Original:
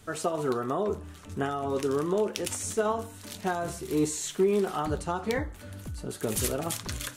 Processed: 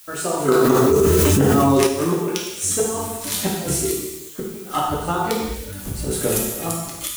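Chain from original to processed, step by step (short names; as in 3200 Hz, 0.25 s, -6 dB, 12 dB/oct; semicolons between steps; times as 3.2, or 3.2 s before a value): spectral trails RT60 0.37 s; reverb removal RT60 0.61 s; gate with hold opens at -35 dBFS; high shelf 7300 Hz +9.5 dB; AGC gain up to 11 dB; flipped gate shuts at -9 dBFS, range -28 dB; added noise blue -46 dBFS; non-linear reverb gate 0.42 s falling, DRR -4 dB; 0.48–1.87 fast leveller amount 100%; gain -1 dB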